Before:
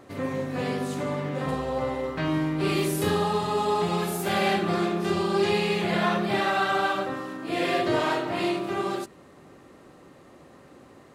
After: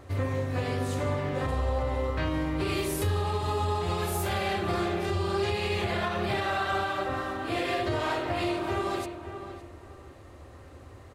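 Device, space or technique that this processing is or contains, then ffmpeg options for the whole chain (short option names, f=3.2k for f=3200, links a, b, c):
car stereo with a boomy subwoofer: -filter_complex "[0:a]lowshelf=f=120:t=q:w=3:g=11.5,asplit=2[a][b];[b]adelay=562,lowpass=f=2.4k:p=1,volume=-11dB,asplit=2[c][d];[d]adelay=562,lowpass=f=2.4k:p=1,volume=0.26,asplit=2[e][f];[f]adelay=562,lowpass=f=2.4k:p=1,volume=0.26[g];[a][c][e][g]amix=inputs=4:normalize=0,alimiter=limit=-19.5dB:level=0:latency=1:release=188"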